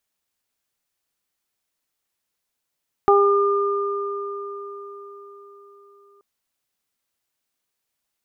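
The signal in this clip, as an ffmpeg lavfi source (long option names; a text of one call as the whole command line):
ffmpeg -f lavfi -i "aevalsrc='0.224*pow(10,-3*t/4.63)*sin(2*PI*402*t)+0.2*pow(10,-3*t/0.51)*sin(2*PI*804*t)+0.158*pow(10,-3*t/4.65)*sin(2*PI*1206*t)':duration=3.13:sample_rate=44100" out.wav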